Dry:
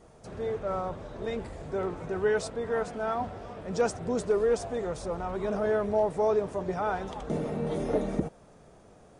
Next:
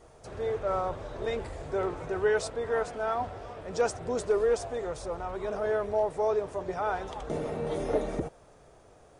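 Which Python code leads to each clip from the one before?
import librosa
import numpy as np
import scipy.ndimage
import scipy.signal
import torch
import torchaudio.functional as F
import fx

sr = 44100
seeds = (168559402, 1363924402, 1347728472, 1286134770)

y = fx.peak_eq(x, sr, hz=200.0, db=-10.0, octaves=0.84)
y = fx.rider(y, sr, range_db=10, speed_s=2.0)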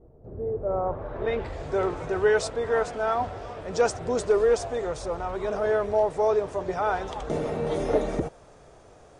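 y = fx.filter_sweep_lowpass(x, sr, from_hz=360.0, to_hz=8100.0, start_s=0.52, end_s=1.76, q=0.88)
y = F.gain(torch.from_numpy(y), 4.5).numpy()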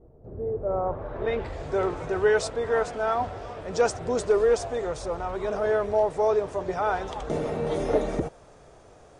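y = x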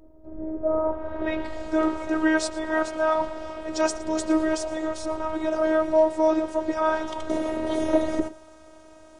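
y = x + 10.0 ** (-19.5 / 20.0) * np.pad(x, (int(113 * sr / 1000.0), 0))[:len(x)]
y = fx.robotise(y, sr, hz=314.0)
y = F.gain(torch.from_numpy(y), 5.0).numpy()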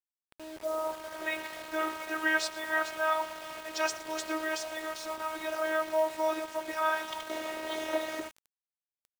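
y = fx.bandpass_q(x, sr, hz=2600.0, q=0.94)
y = fx.quant_dither(y, sr, seeds[0], bits=8, dither='none')
y = F.gain(torch.from_numpy(y), 2.5).numpy()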